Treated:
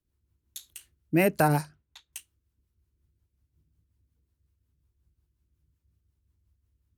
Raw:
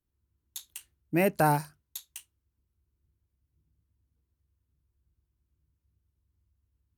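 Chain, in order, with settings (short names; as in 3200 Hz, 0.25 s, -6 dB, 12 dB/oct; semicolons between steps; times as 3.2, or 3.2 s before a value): 1.48–2.13 low-pass opened by the level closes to 1700 Hz, open at -22 dBFS; rotary speaker horn 5.5 Hz; gain +4.5 dB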